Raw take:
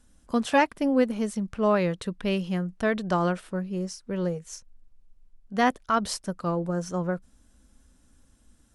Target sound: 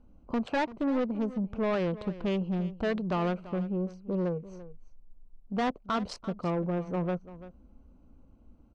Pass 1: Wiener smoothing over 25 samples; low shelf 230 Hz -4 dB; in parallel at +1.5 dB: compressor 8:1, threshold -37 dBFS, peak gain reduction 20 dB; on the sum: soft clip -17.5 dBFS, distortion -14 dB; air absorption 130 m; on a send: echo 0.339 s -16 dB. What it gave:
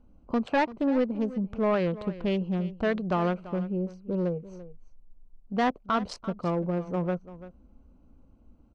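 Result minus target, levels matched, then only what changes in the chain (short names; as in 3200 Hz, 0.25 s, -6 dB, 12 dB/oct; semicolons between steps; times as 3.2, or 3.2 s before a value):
soft clip: distortion -6 dB
change: soft clip -24 dBFS, distortion -9 dB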